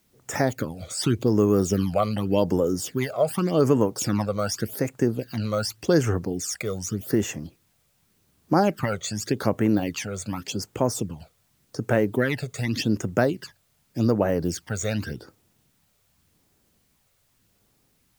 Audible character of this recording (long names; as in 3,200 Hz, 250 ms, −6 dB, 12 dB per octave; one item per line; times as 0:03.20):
phaser sweep stages 12, 0.86 Hz, lowest notch 280–4,400 Hz
a quantiser's noise floor 12 bits, dither triangular